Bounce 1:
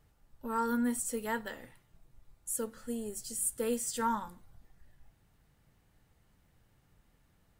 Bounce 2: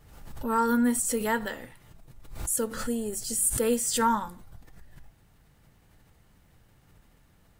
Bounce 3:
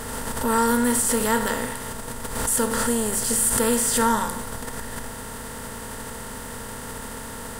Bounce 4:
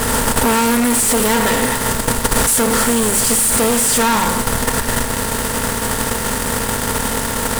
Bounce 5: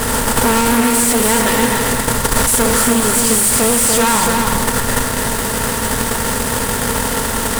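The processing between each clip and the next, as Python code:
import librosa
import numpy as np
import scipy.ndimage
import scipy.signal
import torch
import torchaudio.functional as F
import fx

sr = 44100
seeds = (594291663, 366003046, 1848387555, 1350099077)

y1 = fx.pre_swell(x, sr, db_per_s=59.0)
y1 = y1 * 10.0 ** (7.0 / 20.0)
y2 = fx.bin_compress(y1, sr, power=0.4)
y2 = fx.high_shelf(y2, sr, hz=11000.0, db=3.0)
y3 = fx.fuzz(y2, sr, gain_db=36.0, gate_db=-38.0)
y3 = fx.transient(y3, sr, attack_db=9, sustain_db=-6)
y4 = y3 + 10.0 ** (-4.0 / 20.0) * np.pad(y3, (int(290 * sr / 1000.0), 0))[:len(y3)]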